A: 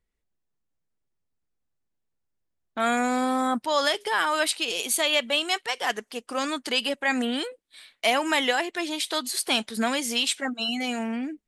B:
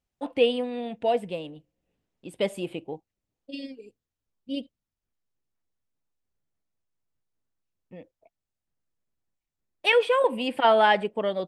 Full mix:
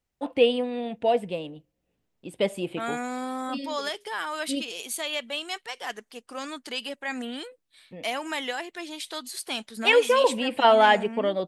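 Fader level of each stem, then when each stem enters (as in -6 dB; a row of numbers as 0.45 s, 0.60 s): -7.5 dB, +1.5 dB; 0.00 s, 0.00 s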